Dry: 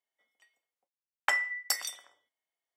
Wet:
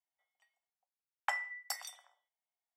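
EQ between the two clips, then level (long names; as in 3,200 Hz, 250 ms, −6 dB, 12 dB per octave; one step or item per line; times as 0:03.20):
four-pole ladder high-pass 660 Hz, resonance 55%
0.0 dB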